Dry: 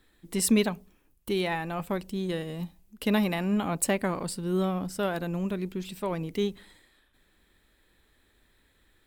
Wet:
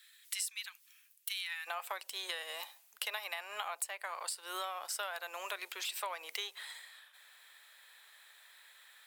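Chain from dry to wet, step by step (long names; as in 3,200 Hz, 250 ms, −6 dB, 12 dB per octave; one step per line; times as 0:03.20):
Bessel high-pass filter 2,500 Hz, order 6, from 0:01.66 1,100 Hz
downward compressor 16 to 1, threshold −46 dBFS, peak gain reduction 24 dB
level +10.5 dB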